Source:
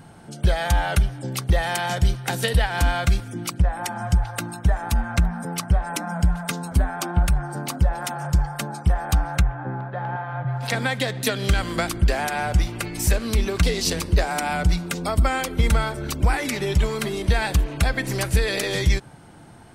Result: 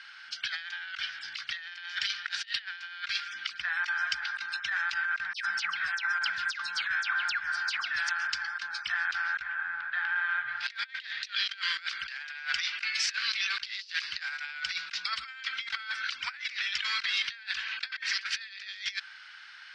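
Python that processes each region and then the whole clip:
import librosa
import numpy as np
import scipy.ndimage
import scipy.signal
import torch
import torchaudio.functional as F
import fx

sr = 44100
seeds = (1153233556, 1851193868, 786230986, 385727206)

y = fx.chain(x, sr, fx.dispersion(late='lows', ms=143.0, hz=1700.0),
    fx.band_squash(depth_pct=70), at=(5.33, 8.09))
y = scipy.signal.sosfilt(scipy.signal.ellip(3, 1.0, 50, [1500.0, 5100.0], 'bandpass', fs=sr, output='sos'), y)
y = fx.over_compress(y, sr, threshold_db=-38.0, ratio=-0.5)
y = y * librosa.db_to_amplitude(5.5)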